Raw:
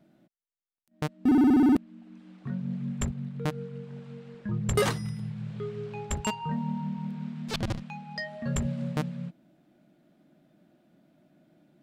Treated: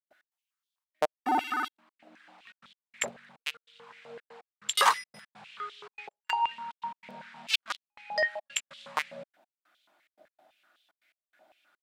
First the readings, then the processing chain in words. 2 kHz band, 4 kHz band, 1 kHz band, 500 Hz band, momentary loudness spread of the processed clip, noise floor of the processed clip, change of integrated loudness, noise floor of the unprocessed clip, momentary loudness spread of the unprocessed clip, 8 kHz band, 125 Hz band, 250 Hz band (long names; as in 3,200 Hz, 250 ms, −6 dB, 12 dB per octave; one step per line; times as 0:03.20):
+6.5 dB, +7.5 dB, +7.0 dB, −4.0 dB, 21 LU, below −85 dBFS, −2.0 dB, −74 dBFS, 18 LU, +2.5 dB, below −30 dB, −20.0 dB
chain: gate pattern ".x.xxxxx.x..xxxx" 143 BPM −60 dB
high-pass on a step sequencer 7.9 Hz 620–3,400 Hz
level +3 dB